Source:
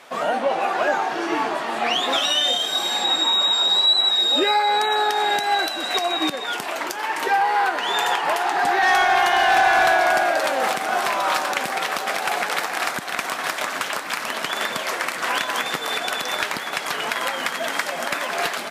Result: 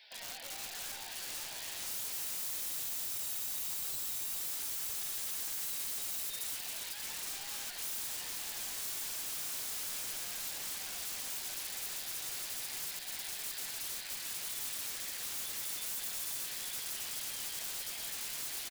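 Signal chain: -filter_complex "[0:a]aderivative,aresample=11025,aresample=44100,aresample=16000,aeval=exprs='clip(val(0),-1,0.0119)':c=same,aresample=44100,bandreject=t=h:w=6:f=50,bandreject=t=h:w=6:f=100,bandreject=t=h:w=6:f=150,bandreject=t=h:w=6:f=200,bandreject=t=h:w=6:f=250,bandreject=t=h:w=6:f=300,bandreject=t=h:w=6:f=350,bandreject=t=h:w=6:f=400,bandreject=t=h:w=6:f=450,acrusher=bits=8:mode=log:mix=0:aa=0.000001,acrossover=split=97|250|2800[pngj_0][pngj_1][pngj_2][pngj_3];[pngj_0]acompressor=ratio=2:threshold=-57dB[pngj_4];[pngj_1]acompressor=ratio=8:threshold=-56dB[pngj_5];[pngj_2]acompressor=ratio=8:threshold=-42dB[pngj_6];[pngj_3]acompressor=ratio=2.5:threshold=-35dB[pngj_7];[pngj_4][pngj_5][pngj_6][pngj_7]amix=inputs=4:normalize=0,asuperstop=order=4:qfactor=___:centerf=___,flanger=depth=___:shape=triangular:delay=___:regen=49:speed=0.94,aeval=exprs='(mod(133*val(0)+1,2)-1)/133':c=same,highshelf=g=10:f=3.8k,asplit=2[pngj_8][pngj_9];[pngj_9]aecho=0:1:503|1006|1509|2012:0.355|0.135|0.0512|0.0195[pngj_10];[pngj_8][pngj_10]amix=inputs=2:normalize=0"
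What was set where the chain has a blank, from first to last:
2.3, 1200, 2, 4.5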